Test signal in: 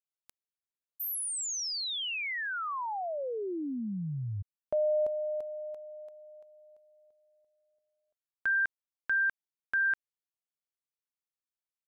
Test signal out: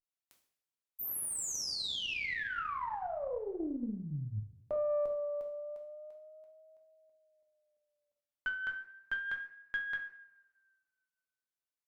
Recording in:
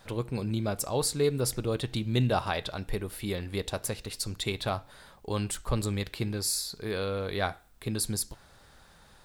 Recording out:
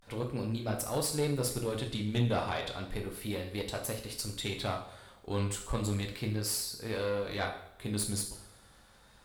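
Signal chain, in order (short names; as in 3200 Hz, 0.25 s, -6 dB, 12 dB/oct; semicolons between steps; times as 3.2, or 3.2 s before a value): two-slope reverb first 0.58 s, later 1.7 s, from -19 dB, DRR 0.5 dB; vibrato 0.33 Hz 69 cents; tube stage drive 18 dB, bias 0.55; gain -3 dB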